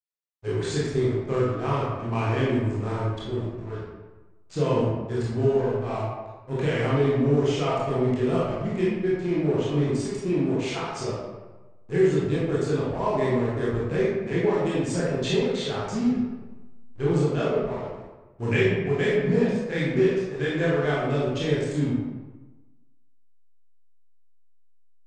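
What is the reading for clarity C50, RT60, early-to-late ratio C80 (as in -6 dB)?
-1.5 dB, 1.2 s, 1.5 dB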